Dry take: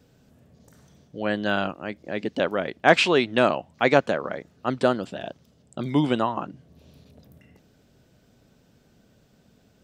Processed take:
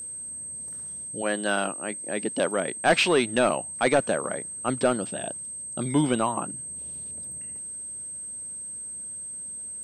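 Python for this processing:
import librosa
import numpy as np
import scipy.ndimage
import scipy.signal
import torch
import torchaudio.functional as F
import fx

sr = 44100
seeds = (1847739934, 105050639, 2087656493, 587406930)

y = fx.highpass(x, sr, hz=fx.line((1.21, 280.0), (2.88, 120.0)), slope=12, at=(1.21, 2.88), fade=0.02)
y = 10.0 ** (-11.5 / 20.0) * np.tanh(y / 10.0 ** (-11.5 / 20.0))
y = y + 10.0 ** (-34.0 / 20.0) * np.sin(2.0 * np.pi * 8300.0 * np.arange(len(y)) / sr)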